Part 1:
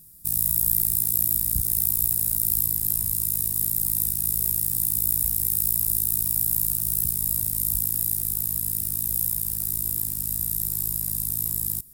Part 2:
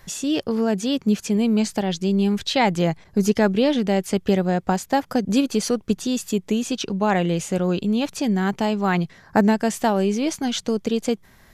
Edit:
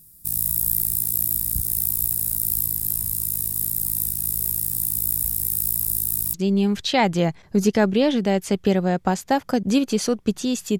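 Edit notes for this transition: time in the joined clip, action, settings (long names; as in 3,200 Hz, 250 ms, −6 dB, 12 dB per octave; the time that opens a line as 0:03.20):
part 1
0:06.34: continue with part 2 from 0:01.96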